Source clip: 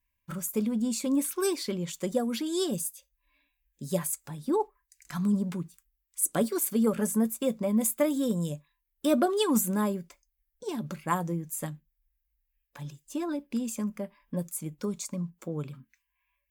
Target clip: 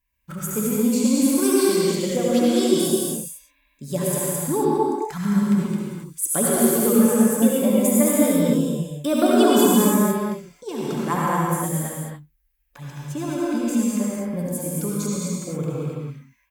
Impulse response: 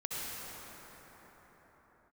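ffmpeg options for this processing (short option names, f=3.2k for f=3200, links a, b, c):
-filter_complex "[0:a]acontrast=53,aecho=1:1:215:0.708[a];[1:a]atrim=start_sample=2205,afade=t=out:st=0.34:d=0.01,atrim=end_sample=15435[b];[a][b]afir=irnorm=-1:irlink=0"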